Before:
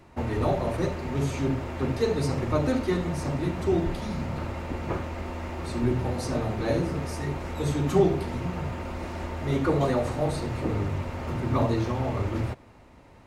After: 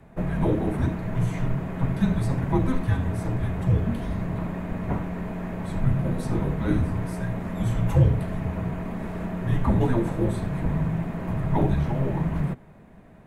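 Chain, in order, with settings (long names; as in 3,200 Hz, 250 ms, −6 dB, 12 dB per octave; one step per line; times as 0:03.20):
parametric band 5,400 Hz −14 dB 1.3 octaves
frequency shifter −260 Hz
level +3 dB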